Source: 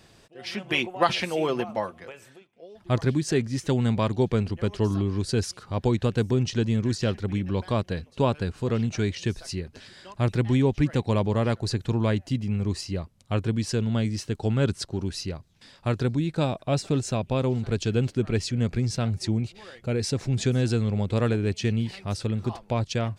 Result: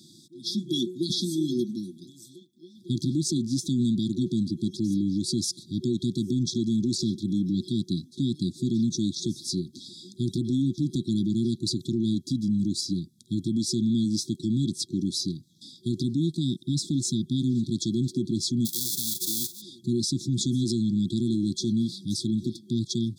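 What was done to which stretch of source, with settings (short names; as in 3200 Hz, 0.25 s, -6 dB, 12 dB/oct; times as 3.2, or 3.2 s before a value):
18.65–19.6 spectral whitening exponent 0.1
whole clip: FFT band-reject 370–3300 Hz; HPF 150 Hz 24 dB/oct; limiter -24.5 dBFS; gain +6.5 dB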